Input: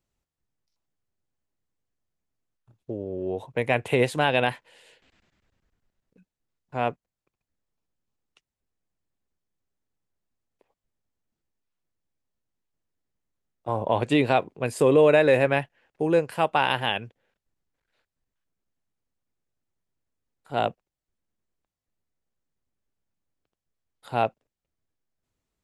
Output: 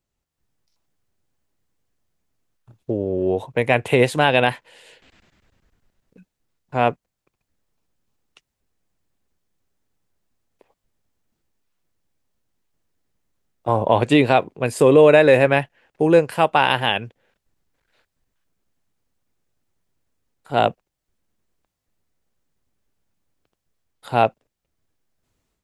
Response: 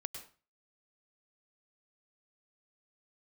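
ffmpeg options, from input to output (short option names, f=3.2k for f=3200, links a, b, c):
-af "dynaudnorm=f=220:g=3:m=9.5dB"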